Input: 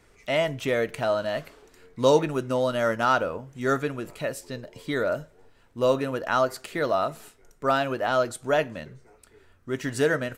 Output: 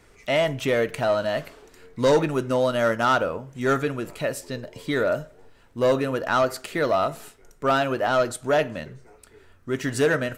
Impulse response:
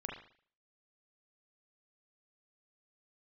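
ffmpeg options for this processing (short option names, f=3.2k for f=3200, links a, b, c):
-filter_complex "[0:a]asettb=1/sr,asplit=3[a][b][c];[a]atrim=end=2.564[d];[b]atrim=start=2.56:end=3.55,asetpts=PTS-STARTPTS,afade=t=in:d=0.004:c=qsin,afade=t=out:st=0.986:d=0.004:c=qsin,aeval=exprs='0.316*(cos(1*acos(clip(val(0)/0.316,-1,1)))-cos(1*PI/2))+0.0178*(cos(5*acos(clip(val(0)/0.316,-1,1)))-cos(5*PI/2))+0.02*(cos(7*acos(clip(val(0)/0.316,-1,1)))-cos(7*PI/2))':c=same[e];[c]atrim=start=3.546[f];[d][e]acrossfade=d=0.004:c1=hsin:c2=qsin[g];[g][f]acrossfade=d=0.004:c1=qsin:c2=hsin,asoftclip=type=tanh:threshold=-16dB,asplit=2[h][i];[1:a]atrim=start_sample=2205[j];[i][j]afir=irnorm=-1:irlink=0,volume=-17.5dB[k];[h][k]amix=inputs=2:normalize=0,volume=3dB"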